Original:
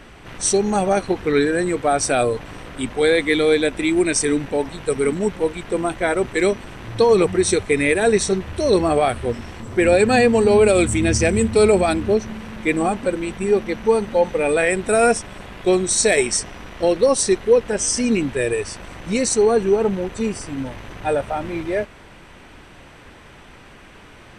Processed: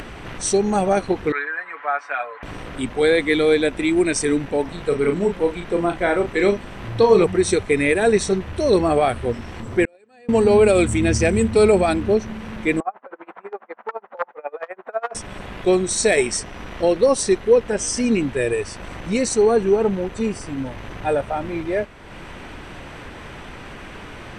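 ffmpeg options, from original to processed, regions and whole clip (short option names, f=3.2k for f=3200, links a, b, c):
-filter_complex "[0:a]asettb=1/sr,asplit=3[a][b][c];[a]atrim=end=1.324[d];[b]atrim=start=1.32:end=2.43,asetpts=PTS-STARTPTS,afade=t=in:d=0.004:c=qsin,afade=t=out:st=1.106:d=0.004:c=qsin,asuperpass=centerf=1400:order=4:qfactor=1.2,aecho=1:1:7:0.66,atrim=end_sample=48951[e];[c]atrim=start=2.426[f];[d][e]acrossfade=d=0.004:c1=hsin:c2=qsin[g];[g][f]acrossfade=d=0.004:c1=qsin:c2=hsin,asettb=1/sr,asplit=3[h][i][j];[h]atrim=end=4.654[k];[i]atrim=start=4.65:end=7.24,asetpts=PTS-STARTPTS,afade=t=in:d=0.004:c=qsin,afade=t=out:st=2.586:d=0.004:c=qsin,acrossover=split=6400[l][m];[m]acompressor=threshold=-49dB:ratio=4:attack=1:release=60[n];[l][n]amix=inputs=2:normalize=0,asplit=2[o][p];[p]adelay=35,volume=-6.5dB[q];[o][q]amix=inputs=2:normalize=0,atrim=end_sample=114219[r];[j]atrim=start=7.236[s];[k][r]acrossfade=d=0.004:c1=hsin:c2=qsin[t];[t][s]acrossfade=d=0.004:c1=qsin:c2=hsin,asettb=1/sr,asplit=3[u][v][w];[u]atrim=end=9.854[x];[v]atrim=start=9.85:end=10.29,asetpts=PTS-STARTPTS,afade=t=in:d=0.004:c=qsin,afade=t=out:st=0.436:d=0.004:c=qsin,highpass=290,agate=range=-38dB:threshold=-9dB:ratio=16:release=100:detection=peak[y];[w]atrim=start=10.286[z];[x][y]acrossfade=d=0.004:c1=hsin:c2=qsin[aa];[aa][z]acrossfade=d=0.004:c1=qsin:c2=hsin,asettb=1/sr,asplit=3[ab][ac][ad];[ab]atrim=end=12.804[ae];[ac]atrim=start=12.8:end=15.15,asetpts=PTS-STARTPTS,afade=t=in:d=0.004:c=qsin,afade=t=out:st=2.346:d=0.004:c=qsin,aeval=exprs='(mod(2.37*val(0)+1,2)-1)/2.37':c=same,asuperpass=centerf=970:order=4:qfactor=1.1,aeval=exprs='val(0)*pow(10,-29*(0.5-0.5*cos(2*PI*12*n/s))/20)':c=same[af];[ad]atrim=start=15.146[ag];[ae][af]acrossfade=d=0.004:c1=hsin:c2=qsin[ah];[ah][ag]acrossfade=d=0.004:c1=qsin:c2=hsin,highshelf=f=4.6k:g=-5.5,acompressor=mode=upward:threshold=-27dB:ratio=2.5"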